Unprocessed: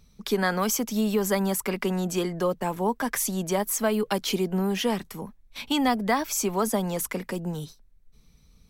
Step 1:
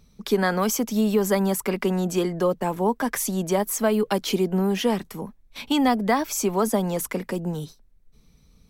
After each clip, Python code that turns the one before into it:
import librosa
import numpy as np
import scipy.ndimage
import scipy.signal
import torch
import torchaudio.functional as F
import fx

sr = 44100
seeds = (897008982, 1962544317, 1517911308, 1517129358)

y = fx.peak_eq(x, sr, hz=350.0, db=4.0, octaves=2.9)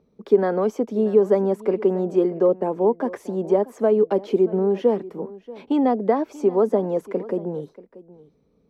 y = fx.bandpass_q(x, sr, hz=430.0, q=1.8)
y = y + 10.0 ** (-19.0 / 20.0) * np.pad(y, (int(634 * sr / 1000.0), 0))[:len(y)]
y = y * 10.0 ** (7.0 / 20.0)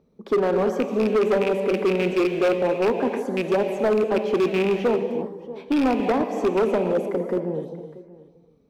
y = fx.rattle_buzz(x, sr, strikes_db=-25.0, level_db=-18.0)
y = fx.rev_gated(y, sr, seeds[0], gate_ms=360, shape='flat', drr_db=5.5)
y = np.clip(10.0 ** (16.0 / 20.0) * y, -1.0, 1.0) / 10.0 ** (16.0 / 20.0)